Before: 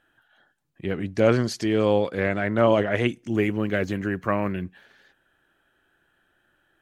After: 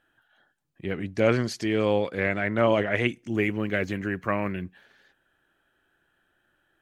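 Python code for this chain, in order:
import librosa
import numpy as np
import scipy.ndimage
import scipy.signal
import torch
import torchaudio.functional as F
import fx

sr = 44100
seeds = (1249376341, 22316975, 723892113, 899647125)

y = fx.dynamic_eq(x, sr, hz=2200.0, q=1.9, threshold_db=-43.0, ratio=4.0, max_db=6)
y = y * librosa.db_to_amplitude(-3.0)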